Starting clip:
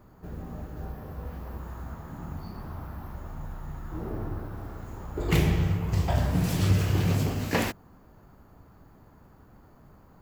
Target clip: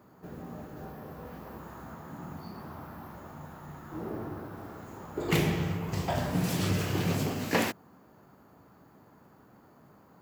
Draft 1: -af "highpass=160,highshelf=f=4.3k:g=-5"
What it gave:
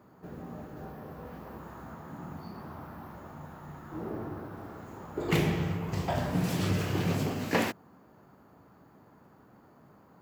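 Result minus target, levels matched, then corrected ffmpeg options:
8000 Hz band -3.5 dB
-af "highpass=160"

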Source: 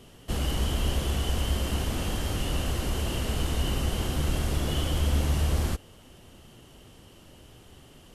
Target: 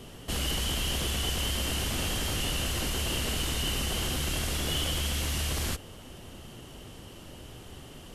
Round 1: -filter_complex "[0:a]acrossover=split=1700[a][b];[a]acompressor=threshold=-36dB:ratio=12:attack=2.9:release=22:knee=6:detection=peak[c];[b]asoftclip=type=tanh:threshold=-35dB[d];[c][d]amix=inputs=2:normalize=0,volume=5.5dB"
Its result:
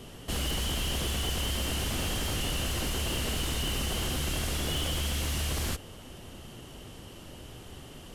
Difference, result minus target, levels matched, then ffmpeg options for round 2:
soft clip: distortion +16 dB
-filter_complex "[0:a]acrossover=split=1700[a][b];[a]acompressor=threshold=-36dB:ratio=12:attack=2.9:release=22:knee=6:detection=peak[c];[b]asoftclip=type=tanh:threshold=-24.5dB[d];[c][d]amix=inputs=2:normalize=0,volume=5.5dB"

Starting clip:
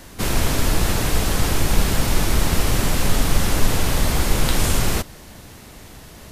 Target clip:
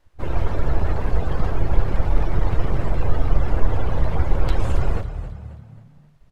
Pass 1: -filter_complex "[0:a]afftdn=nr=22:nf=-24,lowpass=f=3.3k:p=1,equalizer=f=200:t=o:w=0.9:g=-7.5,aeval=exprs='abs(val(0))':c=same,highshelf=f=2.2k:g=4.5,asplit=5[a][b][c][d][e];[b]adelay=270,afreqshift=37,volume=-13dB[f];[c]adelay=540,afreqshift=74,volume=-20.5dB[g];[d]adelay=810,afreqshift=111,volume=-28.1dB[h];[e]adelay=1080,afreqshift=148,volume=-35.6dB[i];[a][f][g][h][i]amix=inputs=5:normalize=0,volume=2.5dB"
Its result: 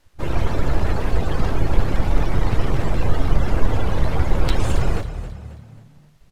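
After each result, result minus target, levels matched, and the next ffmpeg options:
4000 Hz band +6.5 dB; 250 Hz band +2.5 dB
-filter_complex "[0:a]afftdn=nr=22:nf=-24,lowpass=f=3.3k:p=1,equalizer=f=200:t=o:w=0.9:g=-7.5,aeval=exprs='abs(val(0))':c=same,highshelf=f=2.2k:g=-6,asplit=5[a][b][c][d][e];[b]adelay=270,afreqshift=37,volume=-13dB[f];[c]adelay=540,afreqshift=74,volume=-20.5dB[g];[d]adelay=810,afreqshift=111,volume=-28.1dB[h];[e]adelay=1080,afreqshift=148,volume=-35.6dB[i];[a][f][g][h][i]amix=inputs=5:normalize=0,volume=2.5dB"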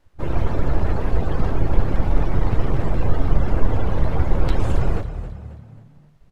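250 Hz band +3.0 dB
-filter_complex "[0:a]afftdn=nr=22:nf=-24,lowpass=f=3.3k:p=1,equalizer=f=200:t=o:w=0.9:g=-17.5,aeval=exprs='abs(val(0))':c=same,highshelf=f=2.2k:g=-6,asplit=5[a][b][c][d][e];[b]adelay=270,afreqshift=37,volume=-13dB[f];[c]adelay=540,afreqshift=74,volume=-20.5dB[g];[d]adelay=810,afreqshift=111,volume=-28.1dB[h];[e]adelay=1080,afreqshift=148,volume=-35.6dB[i];[a][f][g][h][i]amix=inputs=5:normalize=0,volume=2.5dB"

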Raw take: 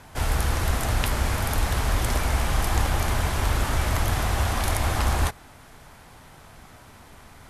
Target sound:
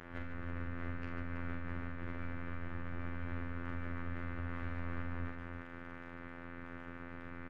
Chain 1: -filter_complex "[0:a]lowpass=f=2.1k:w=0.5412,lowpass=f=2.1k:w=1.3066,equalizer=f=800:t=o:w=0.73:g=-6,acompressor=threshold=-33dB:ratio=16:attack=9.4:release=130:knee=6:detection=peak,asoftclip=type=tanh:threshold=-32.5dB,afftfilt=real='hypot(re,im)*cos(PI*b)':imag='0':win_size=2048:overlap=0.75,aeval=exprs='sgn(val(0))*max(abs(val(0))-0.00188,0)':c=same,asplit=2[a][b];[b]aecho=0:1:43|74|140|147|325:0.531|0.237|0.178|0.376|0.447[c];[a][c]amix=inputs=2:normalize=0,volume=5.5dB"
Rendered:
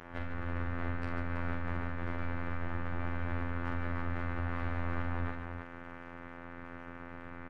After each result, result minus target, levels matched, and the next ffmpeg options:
compressor: peak gain reduction -6 dB; 1000 Hz band +2.0 dB
-filter_complex "[0:a]lowpass=f=2.1k:w=0.5412,lowpass=f=2.1k:w=1.3066,equalizer=f=800:t=o:w=0.73:g=-6,acompressor=threshold=-39.5dB:ratio=16:attack=9.4:release=130:knee=6:detection=peak,asoftclip=type=tanh:threshold=-32.5dB,afftfilt=real='hypot(re,im)*cos(PI*b)':imag='0':win_size=2048:overlap=0.75,aeval=exprs='sgn(val(0))*max(abs(val(0))-0.00188,0)':c=same,asplit=2[a][b];[b]aecho=0:1:43|74|140|147|325:0.531|0.237|0.178|0.376|0.447[c];[a][c]amix=inputs=2:normalize=0,volume=5.5dB"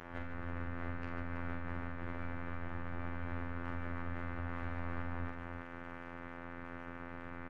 1000 Hz band +3.0 dB
-filter_complex "[0:a]lowpass=f=2.1k:w=0.5412,lowpass=f=2.1k:w=1.3066,equalizer=f=800:t=o:w=0.73:g=-14,acompressor=threshold=-39.5dB:ratio=16:attack=9.4:release=130:knee=6:detection=peak,asoftclip=type=tanh:threshold=-32.5dB,afftfilt=real='hypot(re,im)*cos(PI*b)':imag='0':win_size=2048:overlap=0.75,aeval=exprs='sgn(val(0))*max(abs(val(0))-0.00188,0)':c=same,asplit=2[a][b];[b]aecho=0:1:43|74|140|147|325:0.531|0.237|0.178|0.376|0.447[c];[a][c]amix=inputs=2:normalize=0,volume=5.5dB"

